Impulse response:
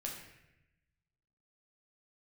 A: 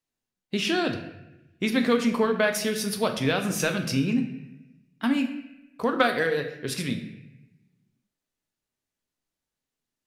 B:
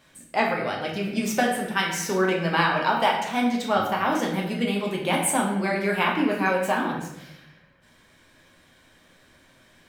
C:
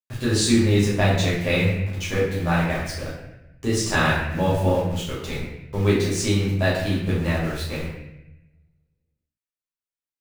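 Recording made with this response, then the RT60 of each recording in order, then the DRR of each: B; 0.90 s, 0.90 s, 0.90 s; 4.5 dB, -2.0 dB, -8.0 dB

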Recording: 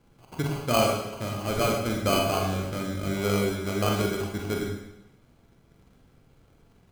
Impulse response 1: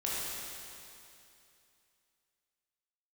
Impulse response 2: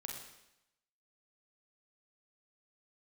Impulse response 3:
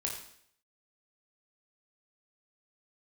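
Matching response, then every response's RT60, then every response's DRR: 2; 2.7 s, 0.90 s, 0.65 s; -7.5 dB, -0.5 dB, -1.0 dB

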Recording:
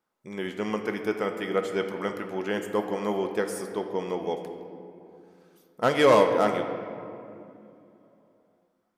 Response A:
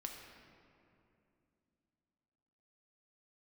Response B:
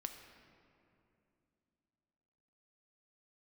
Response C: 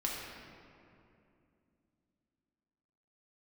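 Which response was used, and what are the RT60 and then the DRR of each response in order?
B; 2.7 s, 2.7 s, 2.7 s; 1.0 dB, 5.5 dB, -3.5 dB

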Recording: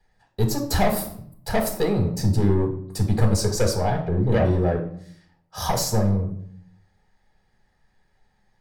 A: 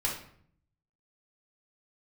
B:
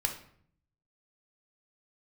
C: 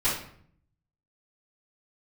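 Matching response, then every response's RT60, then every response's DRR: B; 0.60 s, 0.60 s, 0.60 s; -4.5 dB, 2.0 dB, -13.5 dB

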